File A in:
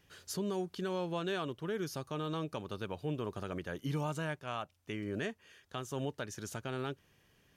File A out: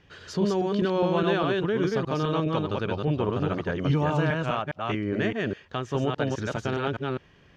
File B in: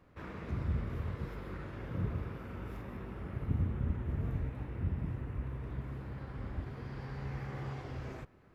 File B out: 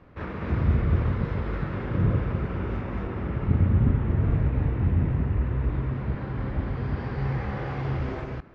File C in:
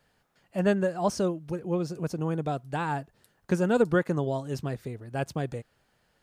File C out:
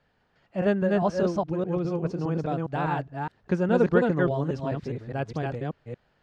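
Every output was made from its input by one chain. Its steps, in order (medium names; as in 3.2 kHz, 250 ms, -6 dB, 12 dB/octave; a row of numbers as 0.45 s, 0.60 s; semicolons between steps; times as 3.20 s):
chunks repeated in reverse 205 ms, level -1.5 dB; distance through air 170 m; normalise loudness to -27 LUFS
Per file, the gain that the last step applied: +10.5 dB, +10.5 dB, +0.5 dB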